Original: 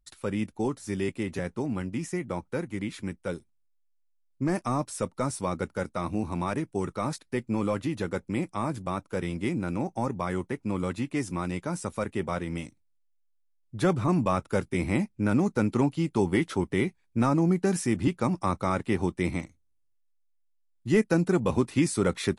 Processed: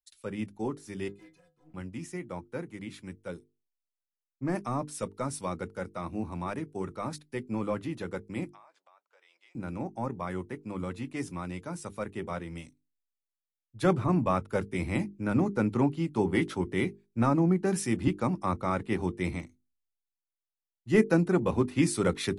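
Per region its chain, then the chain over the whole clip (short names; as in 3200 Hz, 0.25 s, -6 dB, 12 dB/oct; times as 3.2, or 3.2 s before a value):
1.08–1.74 overloaded stage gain 28.5 dB + metallic resonator 150 Hz, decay 0.37 s, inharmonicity 0.03 + Doppler distortion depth 0.17 ms
8.51–9.55 HPF 640 Hz 24 dB/oct + compressor 4:1, threshold -43 dBFS + air absorption 130 m
whole clip: notches 50/100/150/200/250/300/350/400/450 Hz; dynamic EQ 7400 Hz, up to -5 dB, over -51 dBFS, Q 0.79; three-band expander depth 70%; gain -2.5 dB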